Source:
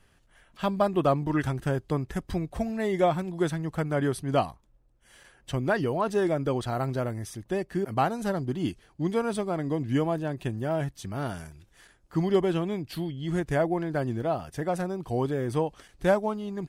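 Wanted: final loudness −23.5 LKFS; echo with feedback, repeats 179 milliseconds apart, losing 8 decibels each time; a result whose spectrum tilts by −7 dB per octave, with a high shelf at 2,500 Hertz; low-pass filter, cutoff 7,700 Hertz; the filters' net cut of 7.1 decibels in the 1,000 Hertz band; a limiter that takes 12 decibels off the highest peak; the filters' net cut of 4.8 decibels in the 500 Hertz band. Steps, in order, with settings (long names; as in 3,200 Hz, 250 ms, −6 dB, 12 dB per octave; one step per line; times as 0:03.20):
low-pass filter 7,700 Hz
parametric band 500 Hz −4 dB
parametric band 1,000 Hz −8 dB
high-shelf EQ 2,500 Hz −3.5 dB
brickwall limiter −26 dBFS
repeating echo 179 ms, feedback 40%, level −8 dB
level +11.5 dB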